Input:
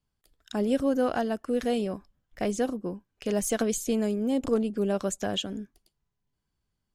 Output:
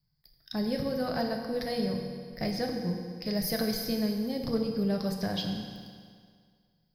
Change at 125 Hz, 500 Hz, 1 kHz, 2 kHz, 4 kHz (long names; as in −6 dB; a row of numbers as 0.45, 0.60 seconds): +3.0, −5.0, −3.5, −1.5, +1.5 decibels